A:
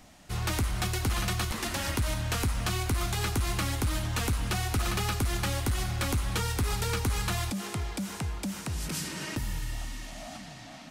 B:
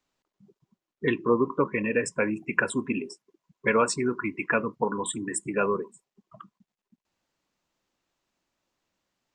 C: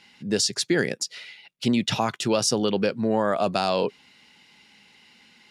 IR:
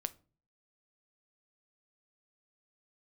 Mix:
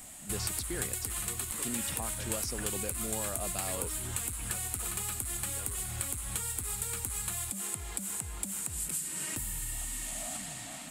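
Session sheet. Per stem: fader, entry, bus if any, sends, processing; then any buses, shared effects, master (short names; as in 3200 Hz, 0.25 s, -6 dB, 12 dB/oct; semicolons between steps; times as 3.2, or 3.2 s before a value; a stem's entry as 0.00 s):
-1.5 dB, 0.00 s, bus A, no send, resonant high shelf 6600 Hz +7 dB, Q 3; notch 6100 Hz, Q 19
-17.0 dB, 0.00 s, bus A, no send, dry
-17.0 dB, 0.00 s, no bus, no send, dry
bus A: 0.0 dB, high shelf 2300 Hz +9 dB; compressor 6:1, threshold -33 dBFS, peak gain reduction 15.5 dB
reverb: off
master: dry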